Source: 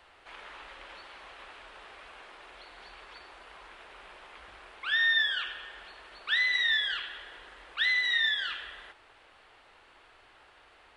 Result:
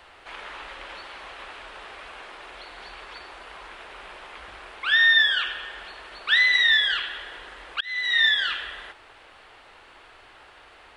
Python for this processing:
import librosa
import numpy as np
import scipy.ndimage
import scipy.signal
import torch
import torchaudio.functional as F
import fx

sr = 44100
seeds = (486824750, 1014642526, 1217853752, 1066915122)

y = fx.auto_swell(x, sr, attack_ms=466.0, at=(7.72, 8.18))
y = y * 10.0 ** (8.0 / 20.0)